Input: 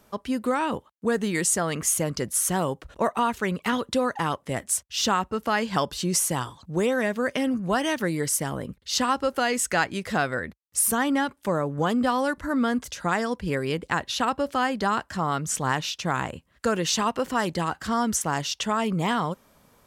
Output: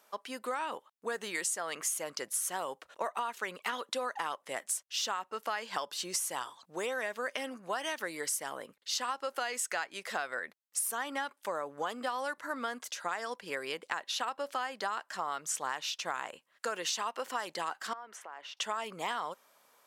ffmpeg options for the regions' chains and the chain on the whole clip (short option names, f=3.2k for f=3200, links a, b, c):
-filter_complex "[0:a]asettb=1/sr,asplit=3[a][b][c];[a]atrim=end=17.934[d];[b]atrim=start=17.93:end=18.57,asetpts=PTS-STARTPTS,afade=t=in:d=0.004:c=qsin,afade=t=out:st=0.636:d=0.004:c=qsin,acrossover=split=290 2700:gain=0.0708 1 0.0794[e][f][g];[e][f][g]amix=inputs=3:normalize=0,acompressor=threshold=-37dB:ratio=5:attack=3.2:release=140:knee=1:detection=peak[h];[c]atrim=start=18.566[i];[d][h]acrossfade=d=0.004:c1=hsin:c2=qsin[j];[j][i]acrossfade=d=0.004:c1=qsin:c2=hsin,highpass=630,acompressor=threshold=-27dB:ratio=6,volume=-3.5dB"